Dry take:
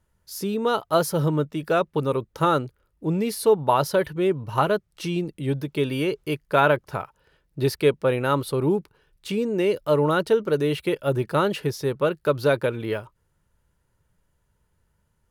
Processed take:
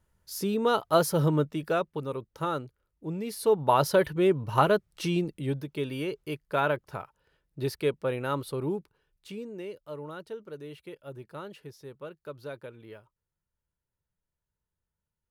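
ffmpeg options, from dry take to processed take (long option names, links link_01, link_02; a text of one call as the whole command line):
ffmpeg -i in.wav -af "volume=7dB,afade=type=out:start_time=1.42:duration=0.57:silence=0.398107,afade=type=in:start_time=3.23:duration=0.66:silence=0.354813,afade=type=out:start_time=5.14:duration=0.53:silence=0.446684,afade=type=out:start_time=8.51:duration=1.29:silence=0.266073" out.wav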